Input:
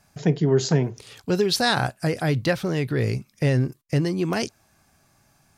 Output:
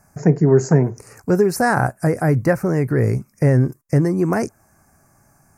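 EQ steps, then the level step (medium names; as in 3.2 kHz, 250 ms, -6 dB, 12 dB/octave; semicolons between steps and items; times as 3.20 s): dynamic bell 5 kHz, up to -6 dB, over -42 dBFS, Q 1; Butterworth band-stop 3.4 kHz, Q 0.78; +6.0 dB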